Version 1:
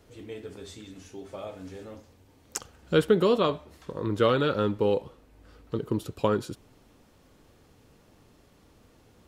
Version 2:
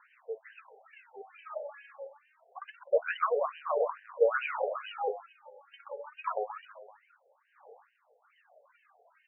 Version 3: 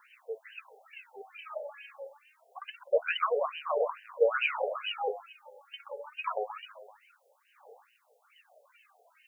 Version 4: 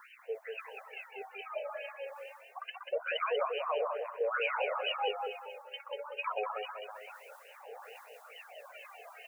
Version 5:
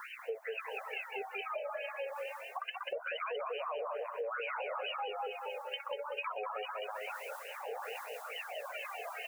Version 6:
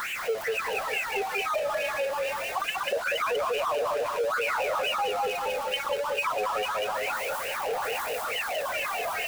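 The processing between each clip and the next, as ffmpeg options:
-af "aecho=1:1:128|256|384|512|640|768:0.631|0.315|0.158|0.0789|0.0394|0.0197,aphaser=in_gain=1:out_gain=1:delay=3.6:decay=0.77:speed=0.26:type=sinusoidal,afftfilt=real='re*between(b*sr/1024,580*pow(2200/580,0.5+0.5*sin(2*PI*2.3*pts/sr))/1.41,580*pow(2200/580,0.5+0.5*sin(2*PI*2.3*pts/sr))*1.41)':imag='im*between(b*sr/1024,580*pow(2200/580,0.5+0.5*sin(2*PI*2.3*pts/sr))/1.41,580*pow(2200/580,0.5+0.5*sin(2*PI*2.3*pts/sr))*1.41)':win_size=1024:overlap=0.75"
-af "aexciter=amount=4.3:drive=5.3:freq=2.5k"
-af "areverse,acompressor=mode=upward:threshold=-40dB:ratio=2.5,areverse,alimiter=level_in=0.5dB:limit=-24dB:level=0:latency=1:release=94,volume=-0.5dB,aecho=1:1:190|380|570:0.562|0.101|0.0182"
-af "alimiter=level_in=4.5dB:limit=-24dB:level=0:latency=1:release=19,volume=-4.5dB,acompressor=threshold=-46dB:ratio=5,volume=9dB"
-af "aeval=exprs='val(0)+0.5*0.0106*sgn(val(0))':c=same,volume=8dB"

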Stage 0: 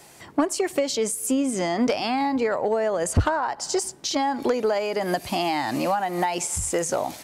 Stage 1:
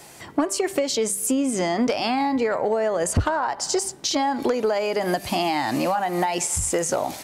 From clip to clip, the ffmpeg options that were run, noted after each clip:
-af "bandreject=f=195.7:t=h:w=4,bandreject=f=391.4:t=h:w=4,bandreject=f=587.1:t=h:w=4,bandreject=f=782.8:t=h:w=4,bandreject=f=978.5:t=h:w=4,bandreject=f=1.1742k:t=h:w=4,bandreject=f=1.3699k:t=h:w=4,bandreject=f=1.5656k:t=h:w=4,bandreject=f=1.7613k:t=h:w=4,bandreject=f=1.957k:t=h:w=4,bandreject=f=2.1527k:t=h:w=4,bandreject=f=2.3484k:t=h:w=4,bandreject=f=2.5441k:t=h:w=4,bandreject=f=2.7398k:t=h:w=4,bandreject=f=2.9355k:t=h:w=4,bandreject=f=3.1312k:t=h:w=4,bandreject=f=3.3269k:t=h:w=4,bandreject=f=3.5226k:t=h:w=4,bandreject=f=3.7183k:t=h:w=4,bandreject=f=3.914k:t=h:w=4,bandreject=f=4.1097k:t=h:w=4,acompressor=threshold=-25dB:ratio=2,volume=4dB"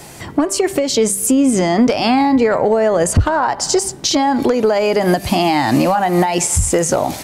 -af "lowshelf=f=230:g=9.5,alimiter=limit=-12.5dB:level=0:latency=1:release=203,volume=7.5dB"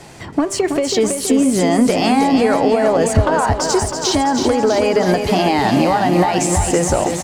-filter_complex "[0:a]adynamicsmooth=sensitivity=5.5:basefreq=6.3k,asplit=2[a][b];[b]aecho=0:1:326|652|978|1304|1630|1956|2282|2608:0.501|0.296|0.174|0.103|0.0607|0.0358|0.0211|0.0125[c];[a][c]amix=inputs=2:normalize=0,volume=-1.5dB"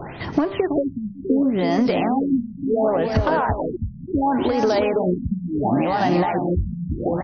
-af "tremolo=f=2.1:d=0.47,acompressor=threshold=-24dB:ratio=6,afftfilt=real='re*lt(b*sr/1024,230*pow(6500/230,0.5+0.5*sin(2*PI*0.7*pts/sr)))':imag='im*lt(b*sr/1024,230*pow(6500/230,0.5+0.5*sin(2*PI*0.7*pts/sr)))':win_size=1024:overlap=0.75,volume=7.5dB"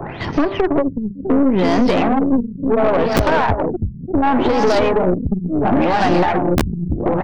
-filter_complex "[0:a]aeval=exprs='(tanh(8.91*val(0)+0.65)-tanh(0.65))/8.91':c=same,acrossover=split=280|1500[a][b][c];[a]aeval=exprs='(mod(7.5*val(0)+1,2)-1)/7.5':c=same[d];[d][b][c]amix=inputs=3:normalize=0,volume=9dB"

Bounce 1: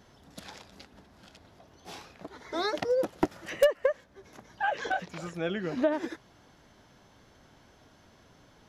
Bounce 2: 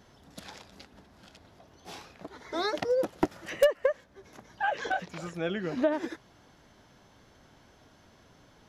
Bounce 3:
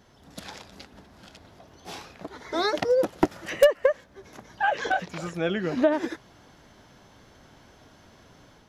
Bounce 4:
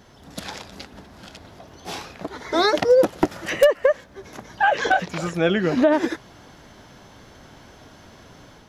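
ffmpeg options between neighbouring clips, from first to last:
-af anull
-af "dynaudnorm=f=150:g=3:m=5dB"
-af "alimiter=level_in=13.5dB:limit=-1dB:release=50:level=0:latency=1,volume=-6.5dB"

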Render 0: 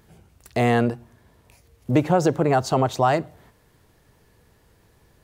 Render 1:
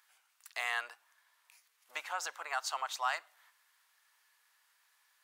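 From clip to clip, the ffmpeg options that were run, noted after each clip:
-af "highpass=f=1.1k:w=0.5412,highpass=f=1.1k:w=1.3066,volume=-5.5dB"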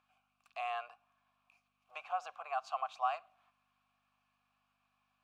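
-filter_complex "[0:a]aeval=exprs='val(0)+0.000794*(sin(2*PI*50*n/s)+sin(2*PI*2*50*n/s)/2+sin(2*PI*3*50*n/s)/3+sin(2*PI*4*50*n/s)/4+sin(2*PI*5*50*n/s)/5)':c=same,asplit=3[a][b][c];[a]bandpass=f=730:t=q:w=8,volume=0dB[d];[b]bandpass=f=1.09k:t=q:w=8,volume=-6dB[e];[c]bandpass=f=2.44k:t=q:w=8,volume=-9dB[f];[d][e][f]amix=inputs=3:normalize=0,volume=7.5dB"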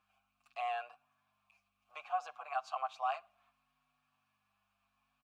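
-filter_complex "[0:a]asplit=2[a][b];[b]adelay=7.1,afreqshift=0.65[c];[a][c]amix=inputs=2:normalize=1,volume=2.5dB"

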